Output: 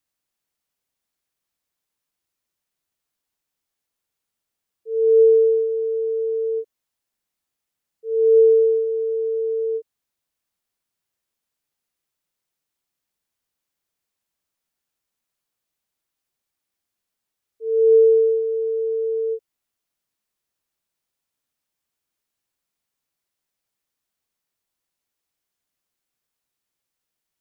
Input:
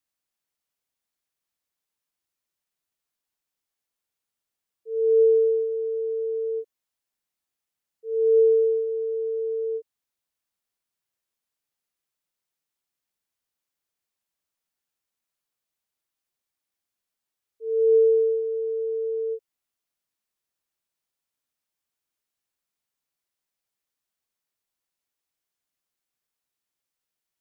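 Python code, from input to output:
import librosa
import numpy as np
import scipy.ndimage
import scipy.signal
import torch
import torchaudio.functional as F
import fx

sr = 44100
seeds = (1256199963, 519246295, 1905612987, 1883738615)

y = fx.low_shelf(x, sr, hz=400.0, db=3.0)
y = y * 10.0 ** (3.0 / 20.0)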